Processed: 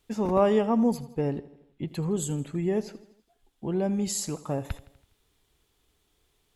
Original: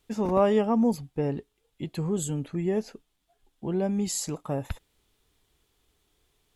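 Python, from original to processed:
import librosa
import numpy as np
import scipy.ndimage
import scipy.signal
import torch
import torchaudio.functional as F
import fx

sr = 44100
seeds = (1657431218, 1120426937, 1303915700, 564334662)

p1 = fx.bass_treble(x, sr, bass_db=2, treble_db=-14, at=(1.38, 1.88))
y = p1 + fx.echo_feedback(p1, sr, ms=82, feedback_pct=55, wet_db=-18.0, dry=0)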